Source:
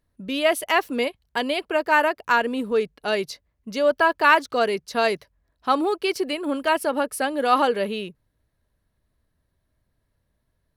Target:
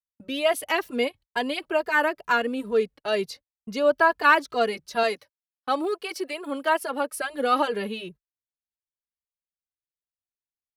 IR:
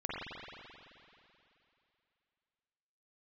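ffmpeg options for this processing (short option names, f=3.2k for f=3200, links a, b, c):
-filter_complex "[0:a]asettb=1/sr,asplit=3[a][b][c];[a]atrim=end=5.034[d];[b]atrim=start=5.03:end=7.14,asetpts=PTS-STARTPTS,afade=t=in:d=0.004:c=qsin,afade=t=out:st=2.106:d=0.004:c=qsin,highpass=f=380:p=1[e];[c]atrim=start=7.136[f];[d][e]acrossfade=d=0.004:c1=hsin:c2=qsin[g];[g][f]acrossfade=d=0.004:c1=qsin:c2=hsin,agate=range=-38dB:threshold=-41dB:ratio=16:detection=peak,asplit=2[h][i];[i]adelay=2.5,afreqshift=2.2[j];[h][j]amix=inputs=2:normalize=1"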